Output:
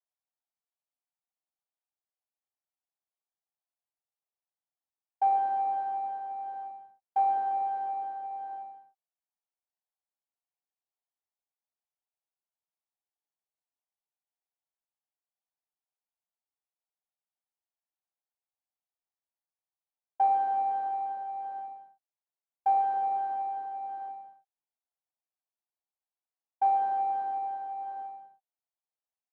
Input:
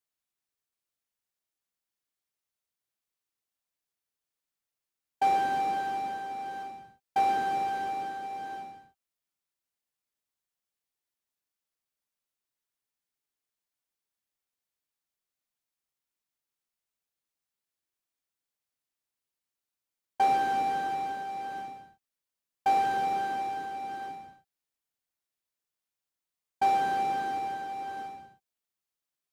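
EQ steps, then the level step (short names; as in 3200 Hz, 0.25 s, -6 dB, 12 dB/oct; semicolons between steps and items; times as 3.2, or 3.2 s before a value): band-pass 770 Hz, Q 3; 0.0 dB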